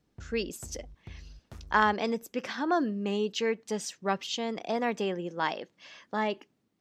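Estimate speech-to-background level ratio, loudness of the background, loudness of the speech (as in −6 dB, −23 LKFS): 19.5 dB, −50.5 LKFS, −31.0 LKFS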